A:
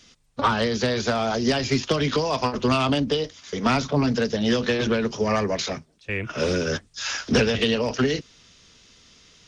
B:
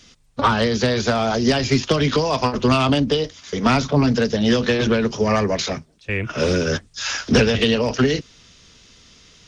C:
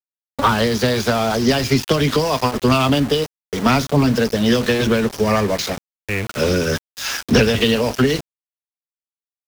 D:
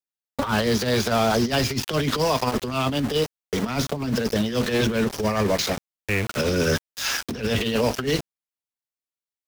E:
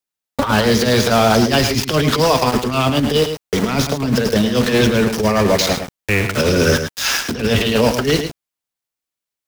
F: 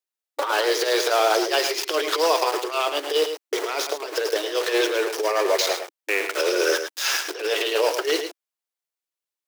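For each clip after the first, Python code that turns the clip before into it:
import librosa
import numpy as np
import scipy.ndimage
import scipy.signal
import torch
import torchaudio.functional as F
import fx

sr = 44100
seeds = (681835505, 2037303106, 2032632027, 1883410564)

y1 = fx.low_shelf(x, sr, hz=150.0, db=4.0)
y1 = F.gain(torch.from_numpy(y1), 3.5).numpy()
y2 = np.where(np.abs(y1) >= 10.0 ** (-26.5 / 20.0), y1, 0.0)
y2 = F.gain(torch.from_numpy(y2), 1.5).numpy()
y3 = fx.over_compress(y2, sr, threshold_db=-18.0, ratio=-0.5)
y3 = F.gain(torch.from_numpy(y3), -3.5).numpy()
y4 = y3 + 10.0 ** (-8.5 / 20.0) * np.pad(y3, (int(108 * sr / 1000.0), 0))[:len(y3)]
y4 = F.gain(torch.from_numpy(y4), 7.0).numpy()
y5 = fx.brickwall_highpass(y4, sr, low_hz=310.0)
y5 = F.gain(torch.from_numpy(y5), -5.0).numpy()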